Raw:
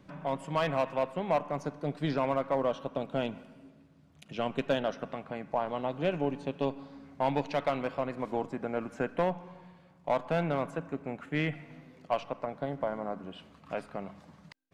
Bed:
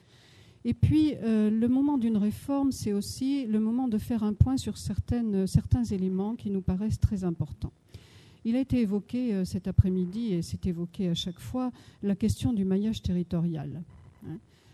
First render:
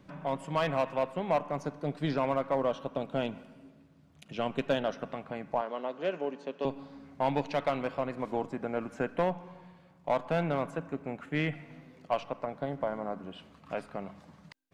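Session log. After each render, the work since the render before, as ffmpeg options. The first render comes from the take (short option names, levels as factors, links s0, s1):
-filter_complex "[0:a]asettb=1/sr,asplit=3[s0][s1][s2];[s0]atrim=end=5.614[s3];[s1]atrim=start=5.61:end=6.65,asetpts=PTS-STARTPTS,afade=t=in:d=0.004:c=qsin,afade=t=out:st=1.036:d=0.004:c=qsin,highpass=f=240:w=0.5412,highpass=f=240:w=1.3066,equalizer=f=300:t=q:w=4:g=-8,equalizer=f=800:t=q:w=4:g=-6,equalizer=f=2400:t=q:w=4:g=-4,equalizer=f=3700:t=q:w=4:g=-5,lowpass=f=7000:w=0.5412,lowpass=f=7000:w=1.3066[s4];[s2]atrim=start=6.646[s5];[s3][s4]acrossfade=d=0.004:c1=hsin:c2=qsin[s6];[s6][s5]acrossfade=d=0.004:c1=qsin:c2=hsin"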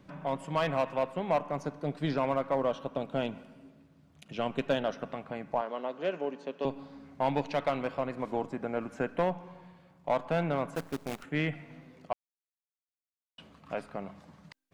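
-filter_complex "[0:a]asettb=1/sr,asplit=3[s0][s1][s2];[s0]atrim=end=10.754[s3];[s1]atrim=start=10.75:end=11.24,asetpts=PTS-STARTPTS,afade=t=in:d=0.004:c=qsin,afade=t=out:st=0.486:d=0.004:c=qsin,acrusher=bits=7:dc=4:mix=0:aa=0.000001[s4];[s2]atrim=start=11.236[s5];[s3][s4]acrossfade=d=0.004:c1=hsin:c2=qsin[s6];[s6][s5]acrossfade=d=0.004:c1=qsin:c2=hsin,asplit=3[s7][s8][s9];[s7]atrim=end=12.13,asetpts=PTS-STARTPTS,afade=t=out:st=12.126:d=0.004:c=hsin[s10];[s8]atrim=start=12.13:end=13.38,asetpts=PTS-STARTPTS,volume=0[s11];[s9]atrim=start=13.38,asetpts=PTS-STARTPTS,afade=t=in:d=0.004:c=hsin[s12];[s10][s11][s12]concat=n=3:v=0:a=1"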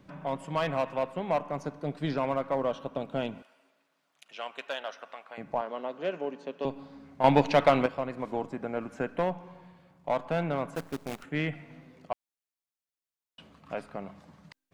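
-filter_complex "[0:a]asettb=1/sr,asplit=3[s0][s1][s2];[s0]atrim=end=3.424[s3];[s1]atrim=start=3.42:end=5.38,asetpts=PTS-STARTPTS,afade=t=in:d=0.004:c=qsin,afade=t=out:st=1.956:d=0.004:c=qsin,highpass=860[s4];[s2]atrim=start=5.376[s5];[s3][s4]acrossfade=d=0.004:c1=hsin:c2=qsin[s6];[s6][s5]acrossfade=d=0.004:c1=qsin:c2=hsin,asplit=3[s7][s8][s9];[s7]atrim=end=7.242[s10];[s8]atrim=start=7.238:end=7.862,asetpts=PTS-STARTPTS,volume=2.66[s11];[s9]atrim=start=7.858[s12];[s10][s11]acrossfade=d=0.004:c1=hsin:c2=hsin[s13];[s13][s12]acrossfade=d=0.004:c1=hsin:c2=hsin"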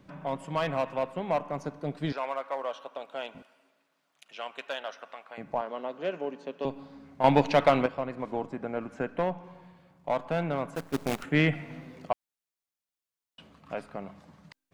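-filter_complex "[0:a]asettb=1/sr,asplit=3[s0][s1][s2];[s0]atrim=end=2.124[s3];[s1]atrim=start=2.12:end=3.35,asetpts=PTS-STARTPTS,afade=t=in:d=0.004:c=qsin,afade=t=out:st=1.226:d=0.004:c=qsin,highpass=670[s4];[s2]atrim=start=3.346[s5];[s3][s4]acrossfade=d=0.004:c1=hsin:c2=qsin[s6];[s6][s5]acrossfade=d=0.004:c1=qsin:c2=hsin,asettb=1/sr,asplit=3[s7][s8][s9];[s7]atrim=end=7.814[s10];[s8]atrim=start=7.81:end=9.44,asetpts=PTS-STARTPTS,afade=t=in:d=0.004:c=qsin,afade=t=out:st=1.626:d=0.004:c=qsin,highshelf=f=6600:g=-7[s11];[s9]atrim=start=9.436[s12];[s10][s11]acrossfade=d=0.004:c1=hsin:c2=qsin[s13];[s13][s12]acrossfade=d=0.004:c1=qsin:c2=hsin,asplit=3[s14][s15][s16];[s14]afade=t=out:st=10.93:d=0.02[s17];[s15]acontrast=84,afade=t=in:st=10.93:d=0.02,afade=t=out:st=12.11:d=0.02[s18];[s16]afade=t=in:st=12.11:d=0.02[s19];[s17][s18][s19]amix=inputs=3:normalize=0"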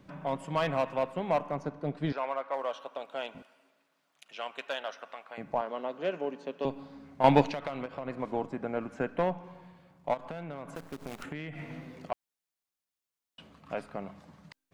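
-filter_complex "[0:a]asettb=1/sr,asplit=3[s0][s1][s2];[s0]atrim=end=1.544[s3];[s1]atrim=start=1.54:end=2.54,asetpts=PTS-STARTPTS,afade=t=in:d=0.004:c=qsin,afade=t=out:st=0.996:d=0.004:c=qsin,lowpass=f=2800:p=1[s4];[s2]atrim=start=2.536[s5];[s3][s4]acrossfade=d=0.004:c1=hsin:c2=qsin[s6];[s6][s5]acrossfade=d=0.004:c1=qsin:c2=hsin,asettb=1/sr,asplit=3[s7][s8][s9];[s7]atrim=end=7.434[s10];[s8]atrim=start=7.43:end=8.08,asetpts=PTS-STARTPTS,afade=t=in:d=0.004:c=qsin,afade=t=out:st=0.646:d=0.004:c=qsin,acompressor=threshold=0.0251:ratio=8:attack=3.2:release=140:knee=1:detection=peak[s11];[s9]atrim=start=8.076[s12];[s10][s11]acrossfade=d=0.004:c1=hsin:c2=qsin[s13];[s13][s12]acrossfade=d=0.004:c1=qsin:c2=hsin,asplit=3[s14][s15][s16];[s14]afade=t=out:st=10.13:d=0.02[s17];[s15]acompressor=threshold=0.0178:ratio=12:attack=3.2:release=140:knee=1:detection=peak,afade=t=in:st=10.13:d=0.02,afade=t=out:st=12.11:d=0.02[s18];[s16]afade=t=in:st=12.11:d=0.02[s19];[s17][s18][s19]amix=inputs=3:normalize=0"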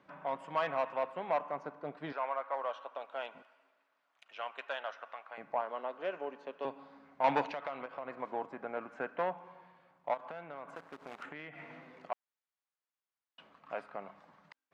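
-af "asoftclip=type=tanh:threshold=0.133,bandpass=f=1200:t=q:w=0.8:csg=0"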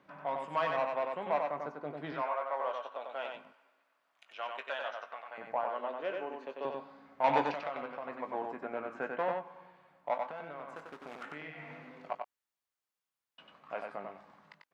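-filter_complex "[0:a]asplit=2[s0][s1];[s1]adelay=20,volume=0.299[s2];[s0][s2]amix=inputs=2:normalize=0,aecho=1:1:94:0.631"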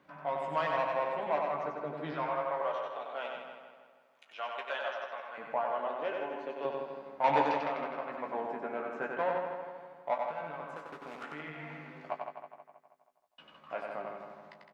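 -filter_complex "[0:a]asplit=2[s0][s1];[s1]adelay=13,volume=0.447[s2];[s0][s2]amix=inputs=2:normalize=0,asplit=2[s3][s4];[s4]adelay=160,lowpass=f=4500:p=1,volume=0.473,asplit=2[s5][s6];[s6]adelay=160,lowpass=f=4500:p=1,volume=0.54,asplit=2[s7][s8];[s8]adelay=160,lowpass=f=4500:p=1,volume=0.54,asplit=2[s9][s10];[s10]adelay=160,lowpass=f=4500:p=1,volume=0.54,asplit=2[s11][s12];[s12]adelay=160,lowpass=f=4500:p=1,volume=0.54,asplit=2[s13][s14];[s14]adelay=160,lowpass=f=4500:p=1,volume=0.54,asplit=2[s15][s16];[s16]adelay=160,lowpass=f=4500:p=1,volume=0.54[s17];[s3][s5][s7][s9][s11][s13][s15][s17]amix=inputs=8:normalize=0"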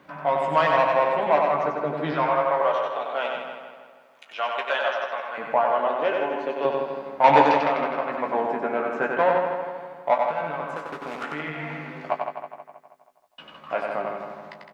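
-af "volume=3.76"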